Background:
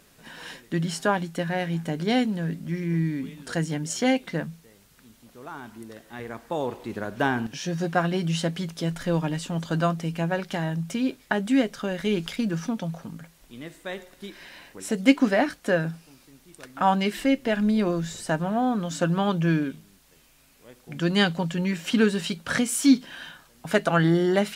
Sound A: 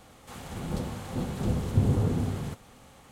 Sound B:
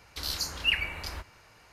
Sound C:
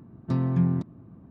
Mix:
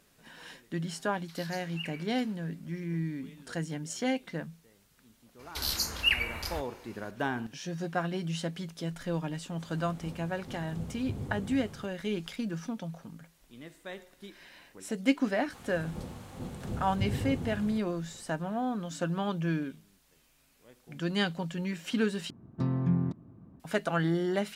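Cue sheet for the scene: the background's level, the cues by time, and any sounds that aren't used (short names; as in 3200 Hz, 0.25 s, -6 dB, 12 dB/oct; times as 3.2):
background -8 dB
1.12 add B -14.5 dB + HPF 1100 Hz
5.39 add B + high shelf 12000 Hz +10.5 dB
9.32 add A -13.5 dB
15.24 add A -8.5 dB
22.3 replace with C -4.5 dB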